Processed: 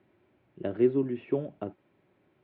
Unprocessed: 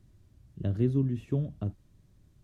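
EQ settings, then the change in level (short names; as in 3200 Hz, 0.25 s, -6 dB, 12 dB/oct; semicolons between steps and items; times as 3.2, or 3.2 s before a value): air absorption 140 m; speaker cabinet 360–3100 Hz, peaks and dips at 370 Hz +6 dB, 570 Hz +3 dB, 830 Hz +5 dB, 1300 Hz +4 dB, 2300 Hz +6 dB; notch 1200 Hz, Q 11; +6.0 dB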